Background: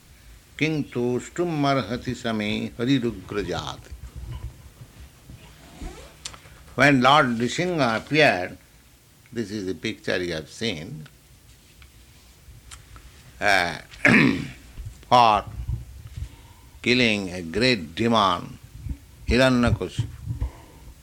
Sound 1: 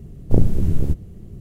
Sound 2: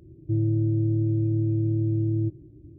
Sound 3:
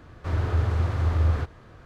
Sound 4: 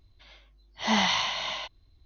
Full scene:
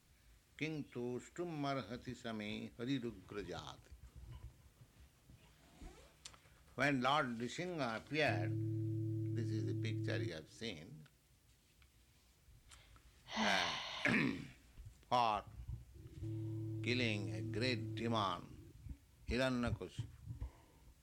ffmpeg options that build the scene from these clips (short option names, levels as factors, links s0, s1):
-filter_complex "[2:a]asplit=2[s0][s1];[0:a]volume=0.112[s2];[s1]acompressor=threshold=0.0251:ratio=6:attack=2.7:release=29:knee=1:detection=rms[s3];[s0]atrim=end=2.78,asetpts=PTS-STARTPTS,volume=0.141,afade=t=in:d=0.004:c=hsin,afade=t=out:st=2.776:d=0.004:c=hsin,adelay=7990[s4];[4:a]atrim=end=2.05,asetpts=PTS-STARTPTS,volume=0.2,afade=t=in:d=0.004:c=hsin,afade=t=out:st=2.046:d=0.004:c=hsin,adelay=12490[s5];[s3]atrim=end=2.78,asetpts=PTS-STARTPTS,volume=0.282,afade=t=in:d=0.004:c=hsin,afade=t=out:st=2.776:d=0.004:c=hsin,adelay=15940[s6];[s2][s4][s5][s6]amix=inputs=4:normalize=0"